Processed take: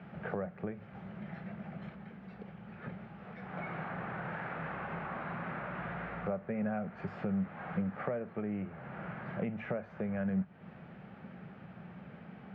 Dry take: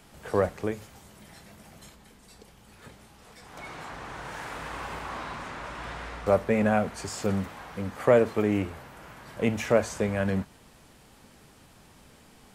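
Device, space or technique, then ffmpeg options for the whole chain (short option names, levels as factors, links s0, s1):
bass amplifier: -af "acompressor=threshold=0.01:ratio=5,highpass=f=81:w=0.5412,highpass=f=81:w=1.3066,equalizer=f=86:t=q:w=4:g=-9,equalizer=f=180:t=q:w=4:g=10,equalizer=f=290:t=q:w=4:g=-8,equalizer=f=450:t=q:w=4:g=-4,equalizer=f=1000:t=q:w=4:g=-9,equalizer=f=1900:t=q:w=4:g=-3,lowpass=f=2100:w=0.5412,lowpass=f=2100:w=1.3066,volume=2"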